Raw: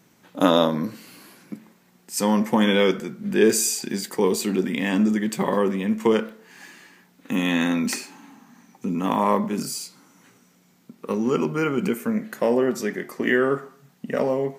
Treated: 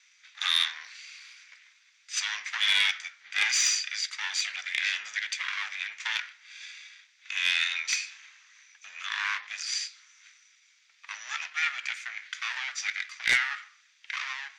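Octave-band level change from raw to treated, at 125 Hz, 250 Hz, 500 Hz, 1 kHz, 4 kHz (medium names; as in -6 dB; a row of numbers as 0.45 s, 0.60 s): under -35 dB, under -40 dB, under -35 dB, -13.5 dB, +4.5 dB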